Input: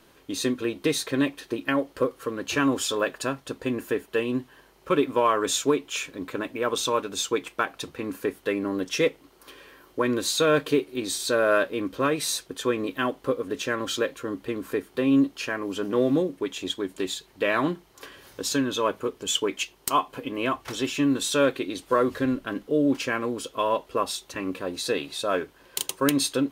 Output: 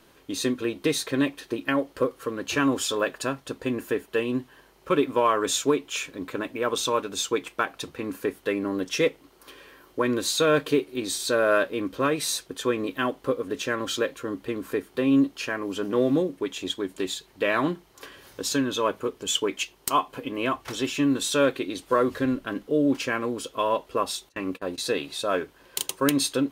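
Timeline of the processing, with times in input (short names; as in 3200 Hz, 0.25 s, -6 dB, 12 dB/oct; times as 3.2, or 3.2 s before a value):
24.29–24.78 gate -37 dBFS, range -25 dB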